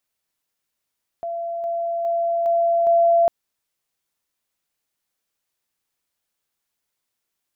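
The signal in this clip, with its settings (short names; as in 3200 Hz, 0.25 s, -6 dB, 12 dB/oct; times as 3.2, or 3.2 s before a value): level ladder 679 Hz -24.5 dBFS, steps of 3 dB, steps 5, 0.41 s 0.00 s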